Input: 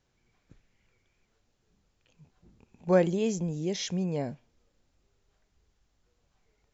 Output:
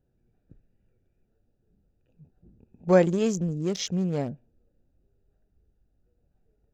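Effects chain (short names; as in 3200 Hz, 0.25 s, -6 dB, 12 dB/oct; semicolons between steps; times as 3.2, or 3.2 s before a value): Wiener smoothing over 41 samples; high shelf 6400 Hz +6.5 dB; gain +4 dB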